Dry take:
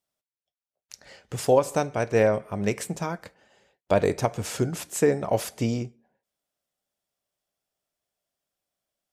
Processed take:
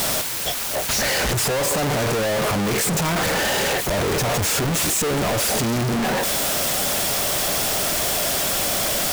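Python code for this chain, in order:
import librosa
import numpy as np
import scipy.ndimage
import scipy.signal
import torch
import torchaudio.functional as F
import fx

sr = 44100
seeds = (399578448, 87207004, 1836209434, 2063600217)

y = np.sign(x) * np.sqrt(np.mean(np.square(x)))
y = F.gain(torch.from_numpy(y), 7.5).numpy()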